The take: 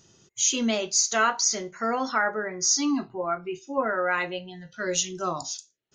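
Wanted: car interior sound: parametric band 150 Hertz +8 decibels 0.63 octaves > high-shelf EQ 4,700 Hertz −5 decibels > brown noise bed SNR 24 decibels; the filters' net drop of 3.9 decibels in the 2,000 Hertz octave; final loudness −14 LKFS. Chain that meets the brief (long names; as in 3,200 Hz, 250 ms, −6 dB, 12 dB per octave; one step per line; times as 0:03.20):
parametric band 150 Hz +8 dB 0.63 octaves
parametric band 2,000 Hz −5 dB
high-shelf EQ 4,700 Hz −5 dB
brown noise bed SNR 24 dB
level +13.5 dB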